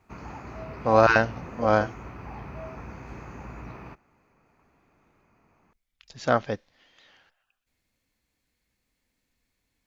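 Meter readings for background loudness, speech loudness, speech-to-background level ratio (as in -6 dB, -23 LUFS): -41.0 LUFS, -24.0 LUFS, 17.0 dB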